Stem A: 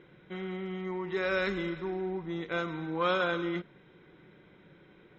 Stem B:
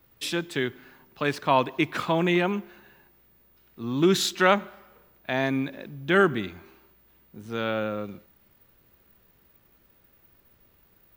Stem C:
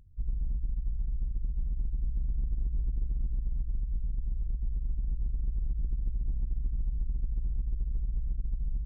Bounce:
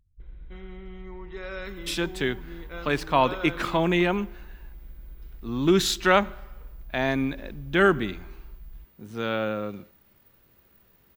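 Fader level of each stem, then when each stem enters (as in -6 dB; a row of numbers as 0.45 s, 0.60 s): -7.0 dB, +0.5 dB, -12.0 dB; 0.20 s, 1.65 s, 0.00 s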